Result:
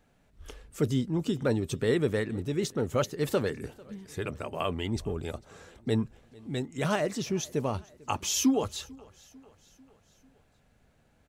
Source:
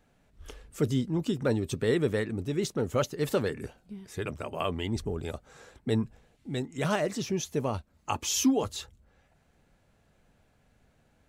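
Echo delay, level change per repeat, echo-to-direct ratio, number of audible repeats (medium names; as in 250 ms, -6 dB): 446 ms, -5.0 dB, -22.5 dB, 3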